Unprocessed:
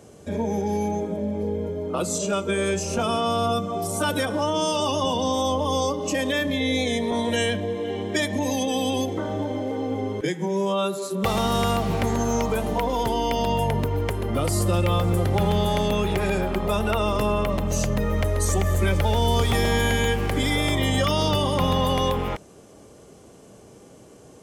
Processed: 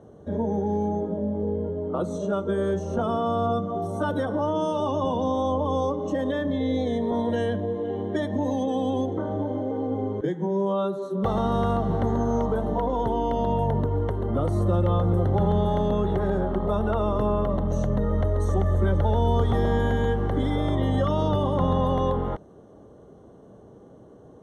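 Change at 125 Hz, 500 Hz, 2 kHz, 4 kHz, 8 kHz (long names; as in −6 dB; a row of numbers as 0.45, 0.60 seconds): 0.0 dB, −0.5 dB, −10.5 dB, −14.5 dB, below −15 dB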